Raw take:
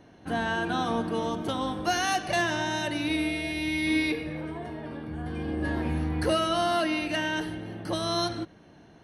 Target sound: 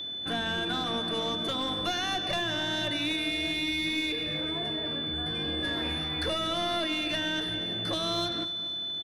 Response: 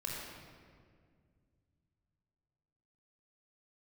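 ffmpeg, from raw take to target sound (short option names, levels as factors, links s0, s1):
-filter_complex "[0:a]equalizer=f=870:t=o:w=0.36:g=-8.5,acrossover=split=610|5300[s0][s1][s2];[s0]acompressor=threshold=0.0158:ratio=4[s3];[s1]acompressor=threshold=0.0158:ratio=4[s4];[s2]acompressor=threshold=0.00141:ratio=4[s5];[s3][s4][s5]amix=inputs=3:normalize=0,acrossover=split=340|6000[s6][s7][s8];[s6]flanger=delay=17.5:depth=6.3:speed=2.8[s9];[s7]aeval=exprs='clip(val(0),-1,0.015)':c=same[s10];[s9][s10][s8]amix=inputs=3:normalize=0,aeval=exprs='val(0)+0.0126*sin(2*PI*3500*n/s)':c=same,asplit=2[s11][s12];[s12]aecho=0:1:240|480|720|960|1200:0.141|0.0819|0.0475|0.0276|0.016[s13];[s11][s13]amix=inputs=2:normalize=0,volume=1.58"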